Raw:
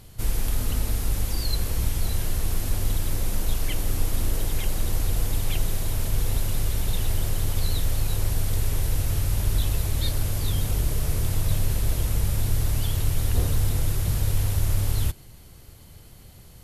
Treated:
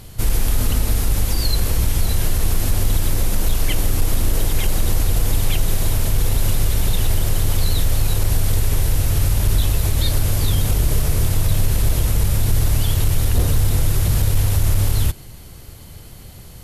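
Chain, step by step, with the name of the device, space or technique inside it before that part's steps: clipper into limiter (hard clipper -13.5 dBFS, distortion -32 dB; peak limiter -16.5 dBFS, peak gain reduction 3 dB); trim +8.5 dB

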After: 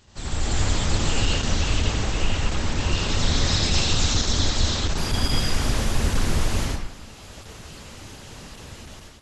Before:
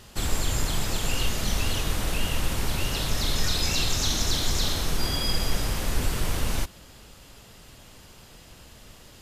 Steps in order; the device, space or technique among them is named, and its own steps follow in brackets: speakerphone in a meeting room (reverberation RT60 0.75 s, pre-delay 72 ms, DRR -2.5 dB; level rider gain up to 11 dB; trim -6 dB; Opus 12 kbps 48 kHz)

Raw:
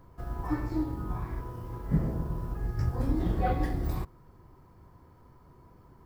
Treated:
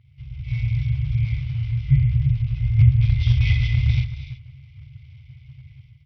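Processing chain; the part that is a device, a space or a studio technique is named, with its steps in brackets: 2.37–2.77 s: dynamic bell 200 Hz, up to -3 dB, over -54 dBFS, Q 1.6; gated-style reverb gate 360 ms rising, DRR 9.5 dB; FFT band-reject 140–2000 Hz; Bluetooth headset (high-pass 110 Hz 12 dB/octave; level rider gain up to 12 dB; resampled via 8 kHz; trim +8 dB; SBC 64 kbps 44.1 kHz)

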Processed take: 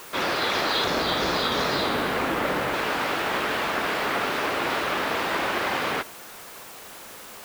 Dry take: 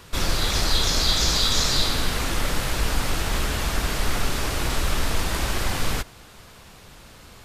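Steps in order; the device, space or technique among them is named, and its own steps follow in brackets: 0.84–2.74 s: tilt EQ -2 dB/octave; wax cylinder (band-pass 340–2600 Hz; wow and flutter; white noise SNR 18 dB); trim +5.5 dB

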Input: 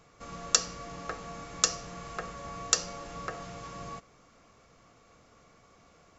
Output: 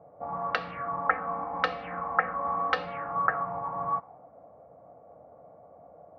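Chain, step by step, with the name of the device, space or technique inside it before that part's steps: 1.06–2.86 s: comb 3.9 ms, depth 74%; envelope filter bass rig (touch-sensitive low-pass 570–4000 Hz up, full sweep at -27.5 dBFS; cabinet simulation 82–2200 Hz, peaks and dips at 110 Hz -5 dB, 220 Hz -5 dB, 380 Hz -9 dB, 800 Hz +8 dB); trim +3.5 dB

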